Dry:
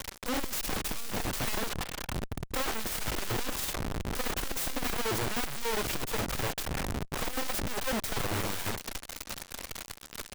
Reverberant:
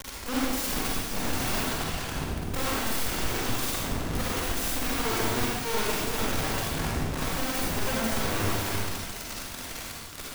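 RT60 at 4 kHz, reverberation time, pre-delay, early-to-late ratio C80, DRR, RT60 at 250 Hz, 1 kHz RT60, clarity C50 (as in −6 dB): 1.1 s, 1.3 s, 40 ms, 0.0 dB, −5.0 dB, 1.5 s, 1.2 s, −3.0 dB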